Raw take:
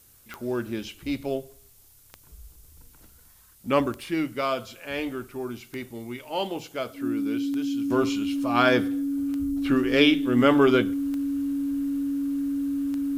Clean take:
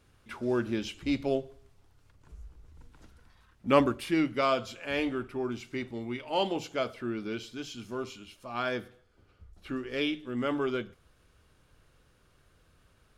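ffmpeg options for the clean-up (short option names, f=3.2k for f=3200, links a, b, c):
-af "adeclick=t=4,bandreject=f=280:w=30,agate=range=-21dB:threshold=-46dB,asetnsamples=n=441:p=0,asendcmd='7.9 volume volume -11.5dB',volume=0dB"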